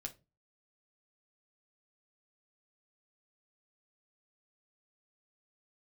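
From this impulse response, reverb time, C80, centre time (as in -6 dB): 0.25 s, 25.5 dB, 8 ms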